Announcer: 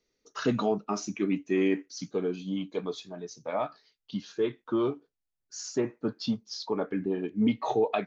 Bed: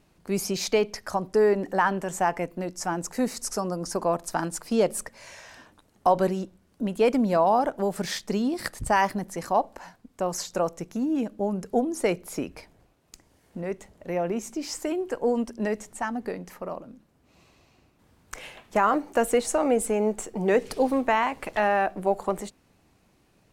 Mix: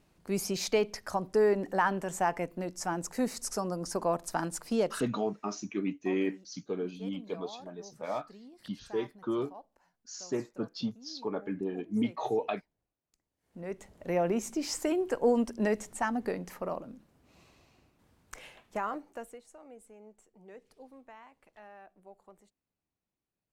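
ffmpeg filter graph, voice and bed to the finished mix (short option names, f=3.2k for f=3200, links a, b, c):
-filter_complex "[0:a]adelay=4550,volume=-4.5dB[a];[1:a]volume=20.5dB,afade=t=out:st=4.72:d=0.41:silence=0.0841395,afade=t=in:st=13.37:d=0.69:silence=0.0562341,afade=t=out:st=17.09:d=2.3:silence=0.0398107[b];[a][b]amix=inputs=2:normalize=0"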